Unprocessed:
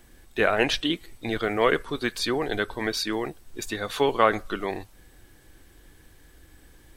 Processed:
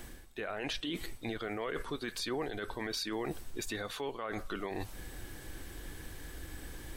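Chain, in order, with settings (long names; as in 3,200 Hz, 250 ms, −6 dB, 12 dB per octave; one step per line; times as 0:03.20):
reversed playback
downward compressor 6 to 1, threshold −38 dBFS, peak gain reduction 22.5 dB
reversed playback
brickwall limiter −34.5 dBFS, peak gain reduction 9.5 dB
level +7.5 dB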